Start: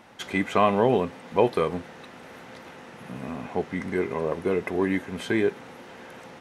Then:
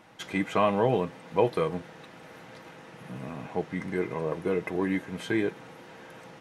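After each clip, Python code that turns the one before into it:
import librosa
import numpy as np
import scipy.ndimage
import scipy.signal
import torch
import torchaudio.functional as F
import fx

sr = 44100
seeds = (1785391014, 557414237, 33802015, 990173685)

y = fx.peak_eq(x, sr, hz=120.0, db=3.0, octaves=0.84)
y = y + 0.39 * np.pad(y, (int(6.3 * sr / 1000.0), 0))[:len(y)]
y = y * librosa.db_to_amplitude(-4.0)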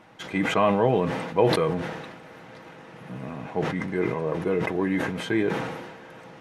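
y = fx.high_shelf(x, sr, hz=4700.0, db=-7.5)
y = fx.sustainer(y, sr, db_per_s=42.0)
y = y * librosa.db_to_amplitude(2.5)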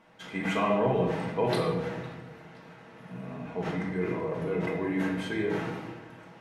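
y = fx.room_shoebox(x, sr, seeds[0], volume_m3=490.0, walls='mixed', distance_m=1.6)
y = y * librosa.db_to_amplitude(-9.0)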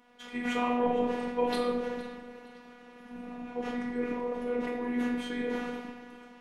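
y = fx.echo_alternate(x, sr, ms=231, hz=890.0, feedback_pct=57, wet_db=-14.0)
y = fx.robotise(y, sr, hz=243.0)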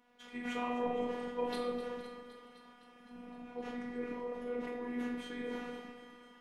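y = fx.echo_thinned(x, sr, ms=257, feedback_pct=72, hz=420.0, wet_db=-13.0)
y = y * librosa.db_to_amplitude(-7.5)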